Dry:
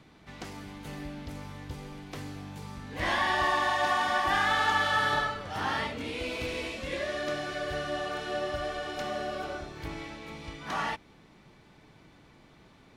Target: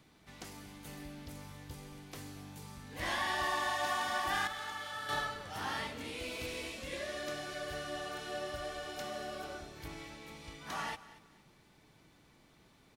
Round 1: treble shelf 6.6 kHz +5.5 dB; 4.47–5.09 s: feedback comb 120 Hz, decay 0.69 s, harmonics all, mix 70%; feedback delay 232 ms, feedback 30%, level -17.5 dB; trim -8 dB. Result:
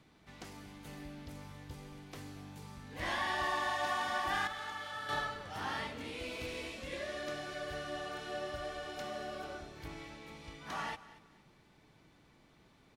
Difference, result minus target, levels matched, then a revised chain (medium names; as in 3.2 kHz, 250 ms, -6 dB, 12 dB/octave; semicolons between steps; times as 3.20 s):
8 kHz band -4.5 dB
treble shelf 6.6 kHz +14.5 dB; 4.47–5.09 s: feedback comb 120 Hz, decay 0.69 s, harmonics all, mix 70%; feedback delay 232 ms, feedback 30%, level -17.5 dB; trim -8 dB